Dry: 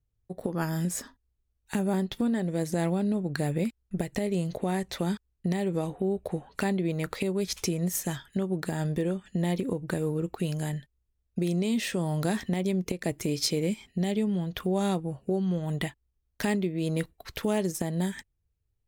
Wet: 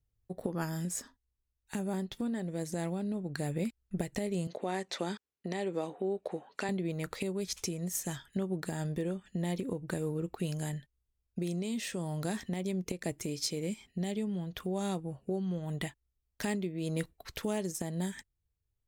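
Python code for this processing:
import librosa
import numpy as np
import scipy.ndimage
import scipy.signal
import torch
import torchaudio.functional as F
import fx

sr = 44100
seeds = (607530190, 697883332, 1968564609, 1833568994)

y = fx.bandpass_edges(x, sr, low_hz=300.0, high_hz=7000.0, at=(4.47, 6.69))
y = fx.dynamic_eq(y, sr, hz=7200.0, q=1.1, threshold_db=-51.0, ratio=4.0, max_db=5)
y = fx.rider(y, sr, range_db=4, speed_s=0.5)
y = y * 10.0 ** (-6.0 / 20.0)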